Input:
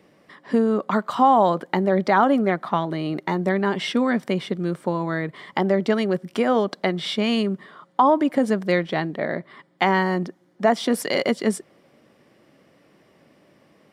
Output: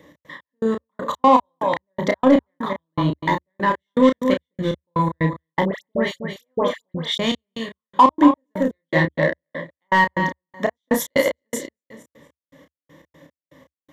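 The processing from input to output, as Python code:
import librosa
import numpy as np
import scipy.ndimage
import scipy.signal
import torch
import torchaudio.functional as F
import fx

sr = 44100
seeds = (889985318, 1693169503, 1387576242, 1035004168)

p1 = fx.ripple_eq(x, sr, per_octave=1.1, db=13)
p2 = fx.echo_feedback(p1, sr, ms=232, feedback_pct=18, wet_db=-8.5)
p3 = fx.step_gate(p2, sr, bpm=121, pattern='x.x..x..', floor_db=-60.0, edge_ms=4.5)
p4 = 10.0 ** (-19.0 / 20.0) * np.tanh(p3 / 10.0 ** (-19.0 / 20.0))
p5 = p3 + F.gain(torch.from_numpy(p4), -4.0).numpy()
p6 = fx.peak_eq(p5, sr, hz=74.0, db=6.5, octaves=0.46)
p7 = fx.doubler(p6, sr, ms=31.0, db=-5.5)
p8 = fx.dispersion(p7, sr, late='highs', ms=92.0, hz=1700.0, at=(5.65, 7.18))
y = F.gain(torch.from_numpy(p8), -1.0).numpy()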